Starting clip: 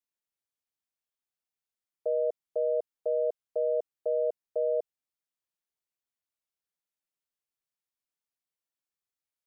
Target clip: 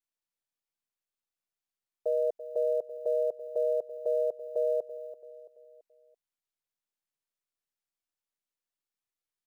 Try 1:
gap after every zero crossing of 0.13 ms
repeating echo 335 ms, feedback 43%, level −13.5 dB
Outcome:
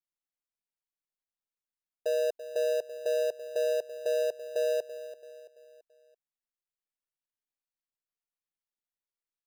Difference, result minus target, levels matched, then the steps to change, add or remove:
gap after every zero crossing: distortion +23 dB
change: gap after every zero crossing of 0.031 ms

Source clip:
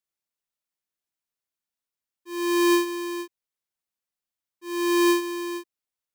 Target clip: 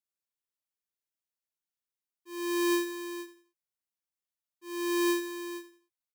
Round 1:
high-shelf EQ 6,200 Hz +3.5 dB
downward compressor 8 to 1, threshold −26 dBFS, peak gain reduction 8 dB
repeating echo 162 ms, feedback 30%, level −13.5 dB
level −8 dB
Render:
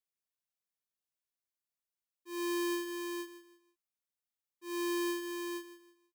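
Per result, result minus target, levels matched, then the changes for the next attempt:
echo 75 ms late; downward compressor: peak gain reduction +8 dB
change: repeating echo 87 ms, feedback 30%, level −13.5 dB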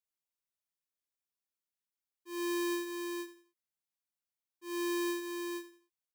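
downward compressor: peak gain reduction +8 dB
remove: downward compressor 8 to 1, threshold −26 dBFS, peak gain reduction 8 dB

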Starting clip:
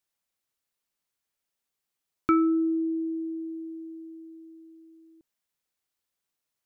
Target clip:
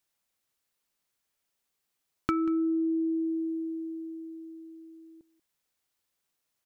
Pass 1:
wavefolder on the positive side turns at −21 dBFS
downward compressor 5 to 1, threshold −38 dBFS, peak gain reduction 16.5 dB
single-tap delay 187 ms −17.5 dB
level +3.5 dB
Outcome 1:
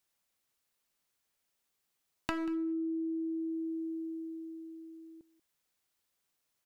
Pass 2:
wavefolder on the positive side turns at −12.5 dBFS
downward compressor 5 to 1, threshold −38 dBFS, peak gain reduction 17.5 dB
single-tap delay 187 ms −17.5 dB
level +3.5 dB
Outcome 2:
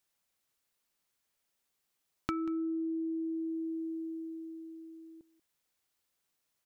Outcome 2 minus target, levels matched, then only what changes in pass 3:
downward compressor: peak gain reduction +7 dB
change: downward compressor 5 to 1, threshold −29.5 dBFS, peak gain reduction 11 dB

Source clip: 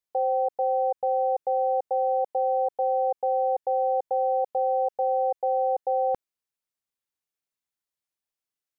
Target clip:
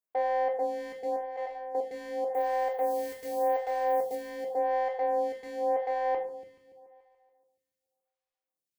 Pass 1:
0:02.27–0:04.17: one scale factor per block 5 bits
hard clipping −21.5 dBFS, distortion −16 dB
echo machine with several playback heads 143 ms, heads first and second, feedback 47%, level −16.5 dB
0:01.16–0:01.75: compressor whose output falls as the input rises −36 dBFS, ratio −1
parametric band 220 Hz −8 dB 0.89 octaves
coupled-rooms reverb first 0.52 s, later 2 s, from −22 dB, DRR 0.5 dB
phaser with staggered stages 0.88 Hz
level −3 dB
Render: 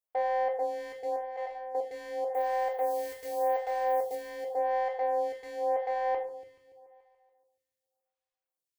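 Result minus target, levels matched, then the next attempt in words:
250 Hz band −7.0 dB
0:02.27–0:04.17: one scale factor per block 5 bits
hard clipping −21.5 dBFS, distortion −16 dB
echo machine with several playback heads 143 ms, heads first and second, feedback 47%, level −16.5 dB
0:01.16–0:01.75: compressor whose output falls as the input rises −36 dBFS, ratio −1
parametric band 220 Hz +4 dB 0.89 octaves
coupled-rooms reverb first 0.52 s, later 2 s, from −22 dB, DRR 0.5 dB
phaser with staggered stages 0.88 Hz
level −3 dB

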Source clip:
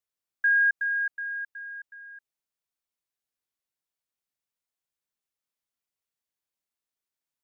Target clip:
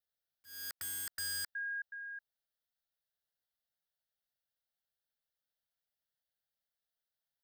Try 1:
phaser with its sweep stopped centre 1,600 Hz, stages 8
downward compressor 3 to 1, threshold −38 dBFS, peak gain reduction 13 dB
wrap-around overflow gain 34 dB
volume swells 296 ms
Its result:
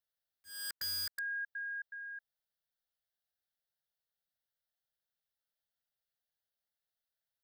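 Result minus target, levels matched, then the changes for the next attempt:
downward compressor: peak gain reduction +5 dB
change: downward compressor 3 to 1, threshold −30.5 dBFS, peak gain reduction 8 dB

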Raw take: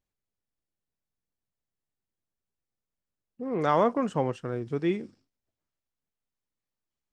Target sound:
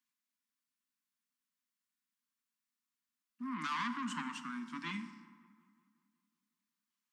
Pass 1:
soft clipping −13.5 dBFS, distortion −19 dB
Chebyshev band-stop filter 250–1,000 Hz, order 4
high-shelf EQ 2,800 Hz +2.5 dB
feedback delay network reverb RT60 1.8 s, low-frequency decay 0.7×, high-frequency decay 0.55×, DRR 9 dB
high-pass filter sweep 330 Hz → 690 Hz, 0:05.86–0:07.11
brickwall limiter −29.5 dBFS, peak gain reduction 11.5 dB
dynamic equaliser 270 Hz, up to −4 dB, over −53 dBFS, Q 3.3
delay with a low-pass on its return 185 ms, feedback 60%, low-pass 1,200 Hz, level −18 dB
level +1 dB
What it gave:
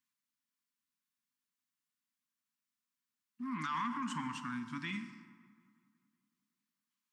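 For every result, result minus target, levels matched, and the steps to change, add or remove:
soft clipping: distortion −11 dB; 125 Hz band +4.0 dB
change: soft clipping −24 dBFS, distortion −8 dB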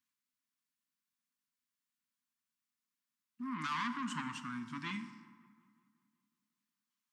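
125 Hz band +3.0 dB
add after dynamic equaliser: Butterworth high-pass 160 Hz 96 dB per octave

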